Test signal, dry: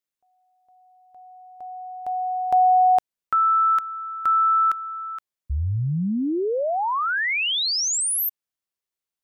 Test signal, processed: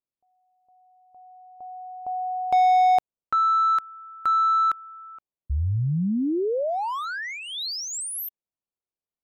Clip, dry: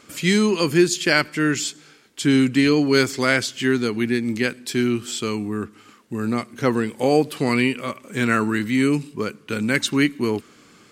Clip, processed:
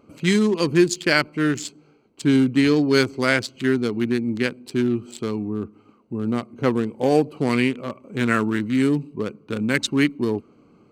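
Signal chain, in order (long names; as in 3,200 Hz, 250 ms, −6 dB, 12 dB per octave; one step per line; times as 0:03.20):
adaptive Wiener filter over 25 samples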